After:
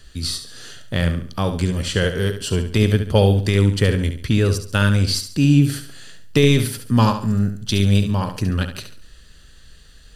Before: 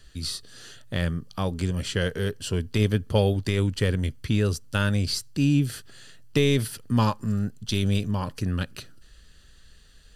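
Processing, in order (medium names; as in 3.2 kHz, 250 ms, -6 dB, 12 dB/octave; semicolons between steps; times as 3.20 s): flutter echo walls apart 12 m, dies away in 0.46 s; trim +6 dB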